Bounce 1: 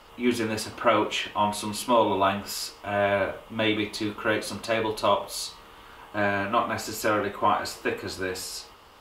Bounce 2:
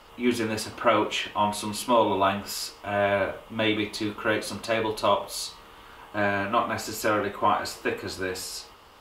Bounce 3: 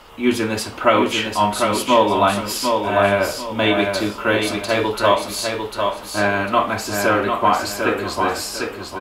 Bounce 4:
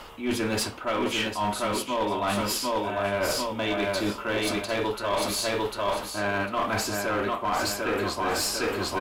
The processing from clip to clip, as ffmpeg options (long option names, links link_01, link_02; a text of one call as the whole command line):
ffmpeg -i in.wav -af anull out.wav
ffmpeg -i in.wav -af "aecho=1:1:749|1498|2247|2996:0.562|0.169|0.0506|0.0152,volume=6.5dB" out.wav
ffmpeg -i in.wav -af "areverse,acompressor=threshold=-26dB:ratio=20,areverse,aeval=exprs='clip(val(0),-1,0.0447)':channel_layout=same,volume=3.5dB" out.wav